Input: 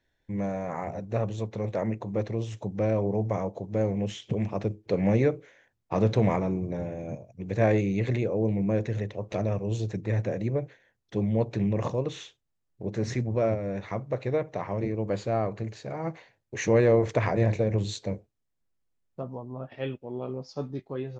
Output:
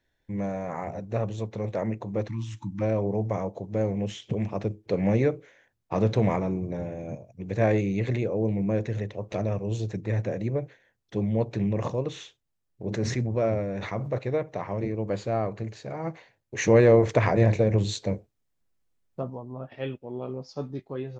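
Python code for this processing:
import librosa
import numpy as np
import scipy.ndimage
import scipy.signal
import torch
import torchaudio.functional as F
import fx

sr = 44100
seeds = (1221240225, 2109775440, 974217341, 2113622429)

y = fx.spec_erase(x, sr, start_s=2.28, length_s=0.54, low_hz=340.0, high_hz=840.0)
y = fx.sustainer(y, sr, db_per_s=43.0, at=(12.84, 14.17), fade=0.02)
y = fx.edit(y, sr, fx.clip_gain(start_s=16.58, length_s=2.72, db=3.5), tone=tone)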